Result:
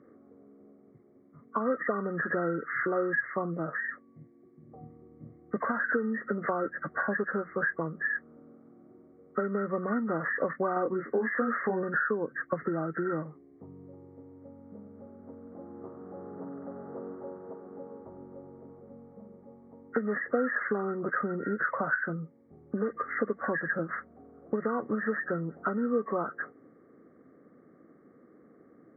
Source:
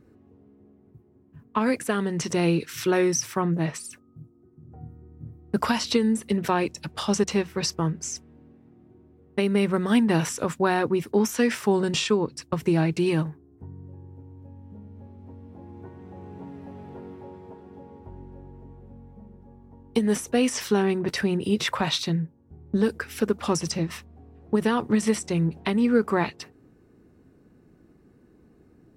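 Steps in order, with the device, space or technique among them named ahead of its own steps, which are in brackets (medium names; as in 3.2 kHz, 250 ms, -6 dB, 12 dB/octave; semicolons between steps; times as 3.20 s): 10.74–11.83 s: doubling 22 ms -2 dB; hearing aid with frequency lowering (knee-point frequency compression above 1.1 kHz 4:1; compression 4:1, threshold -28 dBFS, peak gain reduction 11.5 dB; cabinet simulation 270–6900 Hz, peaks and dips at 370 Hz -4 dB, 540 Hz +5 dB, 900 Hz -9 dB, 2.2 kHz -10 dB); trim +3.5 dB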